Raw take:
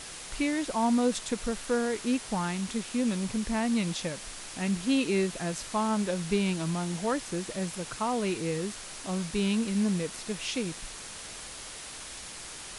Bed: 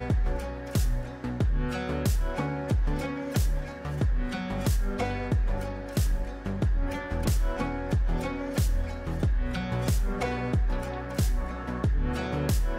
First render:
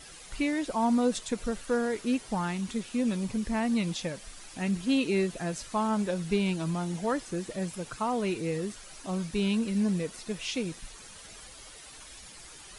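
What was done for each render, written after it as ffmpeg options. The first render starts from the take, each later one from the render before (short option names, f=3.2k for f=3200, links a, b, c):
-af "afftdn=nr=10:nf=-43"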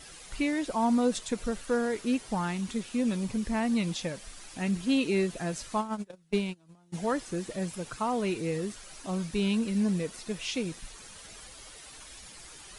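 -filter_complex "[0:a]asplit=3[a][b][c];[a]afade=t=out:st=5.8:d=0.02[d];[b]agate=range=-30dB:threshold=-27dB:ratio=16:release=100:detection=peak,afade=t=in:st=5.8:d=0.02,afade=t=out:st=6.92:d=0.02[e];[c]afade=t=in:st=6.92:d=0.02[f];[d][e][f]amix=inputs=3:normalize=0"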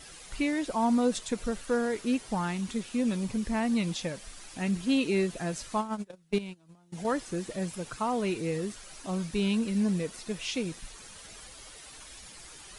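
-filter_complex "[0:a]asettb=1/sr,asplit=3[a][b][c];[a]atrim=end=6.384[d];[b]atrim=start=6.38:end=7.05,asetpts=PTS-STARTPTS,afade=t=in:d=0.004:c=qsin,afade=t=out:st=0.666:d=0.004:c=qsin,acompressor=threshold=-35dB:ratio=6:attack=3.2:release=140:knee=1:detection=peak[e];[c]atrim=start=7.046[f];[d][e]acrossfade=d=0.004:c1=hsin:c2=qsin[g];[g][f]acrossfade=d=0.004:c1=qsin:c2=hsin"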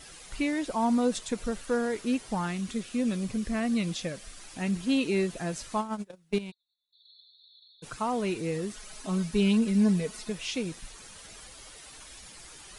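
-filter_complex "[0:a]asettb=1/sr,asplit=3[a][b][c];[a]atrim=end=2.464[d];[b]atrim=start=2.46:end=4.39,asetpts=PTS-STARTPTS,afade=t=in:d=0.004:c=qsin,afade=t=out:st=1.926:d=0.004:c=qsin,bandreject=f=900:w=5.6[e];[c]atrim=start=4.386[f];[d][e]acrossfade=d=0.004:c1=hsin:c2=qsin[g];[g][f]acrossfade=d=0.004:c1=qsin:c2=hsin,asplit=3[h][i][j];[h]afade=t=out:st=6.5:d=0.02[k];[i]asuperpass=centerf=3900:order=20:qfactor=3.8,afade=t=in:st=6.5:d=0.02,afade=t=out:st=7.82:d=0.02[l];[j]afade=t=in:st=7.82:d=0.02[m];[k][l][m]amix=inputs=3:normalize=0,asettb=1/sr,asplit=3[n][o][p];[n]atrim=end=8.744[q];[o]atrim=start=8.74:end=10.3,asetpts=PTS-STARTPTS,afade=t=in:d=0.004:c=qsin,afade=t=out:st=1.556:d=0.004:c=qsin,aecho=1:1:4.7:0.65,atrim=end_sample=68796[r];[p]atrim=start=10.296[s];[q][r]acrossfade=d=0.004:c1=hsin:c2=qsin[t];[t][s]acrossfade=d=0.004:c1=qsin:c2=hsin"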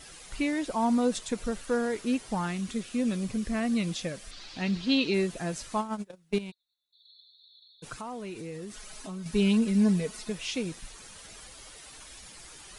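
-filter_complex "[0:a]asettb=1/sr,asplit=3[a][b][c];[a]atrim=end=4.314[d];[b]atrim=start=4.31:end=5.14,asetpts=PTS-STARTPTS,afade=t=in:d=0.004:c=qsin,afade=t=out:st=0.826:d=0.004:c=qsin,lowpass=f=4.3k:t=q:w=2.7[e];[c]atrim=start=5.136[f];[d][e]acrossfade=d=0.004:c1=hsin:c2=qsin[g];[g][f]acrossfade=d=0.004:c1=qsin:c2=hsin,asettb=1/sr,asplit=3[h][i][j];[h]atrim=end=7.934[k];[i]atrim=start=7.93:end=9.26,asetpts=PTS-STARTPTS,afade=t=in:d=0.004:c=qsin,afade=t=out:st=1.326:d=0.004:c=qsin,acompressor=threshold=-38dB:ratio=3:attack=3.2:release=140:knee=1:detection=peak[l];[j]atrim=start=9.256[m];[k][l]acrossfade=d=0.004:c1=hsin:c2=qsin[n];[n][m]acrossfade=d=0.004:c1=qsin:c2=hsin"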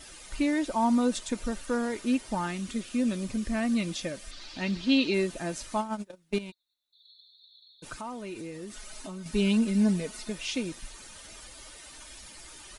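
-af "aecho=1:1:3.3:0.37"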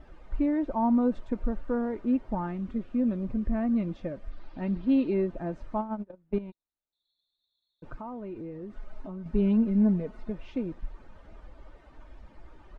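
-af "lowpass=1k,lowshelf=f=72:g=10"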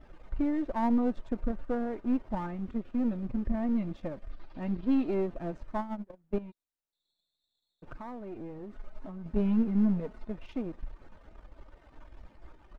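-af "aeval=exprs='if(lt(val(0),0),0.447*val(0),val(0))':c=same"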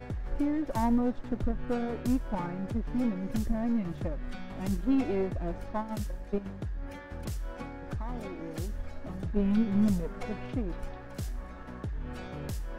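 -filter_complex "[1:a]volume=-10.5dB[a];[0:a][a]amix=inputs=2:normalize=0"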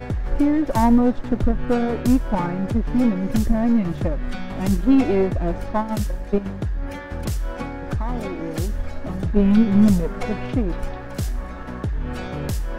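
-af "volume=11dB"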